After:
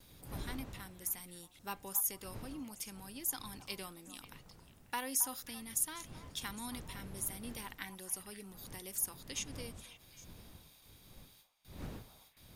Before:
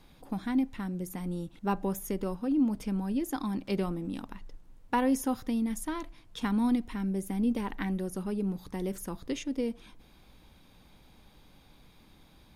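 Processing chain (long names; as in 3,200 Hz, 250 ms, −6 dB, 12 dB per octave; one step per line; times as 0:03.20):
wind on the microphone 130 Hz −30 dBFS
noise gate with hold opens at −40 dBFS
first-order pre-emphasis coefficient 0.97
echo through a band-pass that steps 270 ms, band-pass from 910 Hz, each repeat 1.4 octaves, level −10 dB
level +6.5 dB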